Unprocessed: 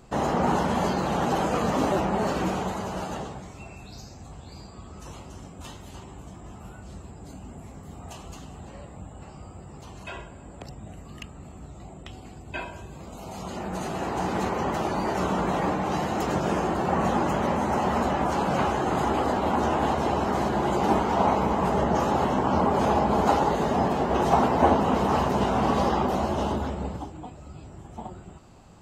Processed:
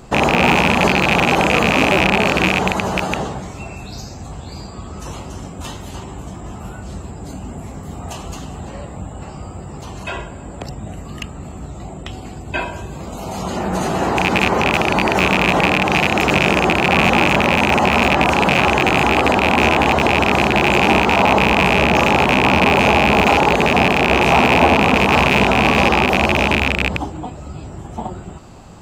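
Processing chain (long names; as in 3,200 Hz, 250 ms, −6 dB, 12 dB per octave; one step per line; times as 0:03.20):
loose part that buzzes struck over −29 dBFS, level −10 dBFS
boost into a limiter +12.5 dB
level −1 dB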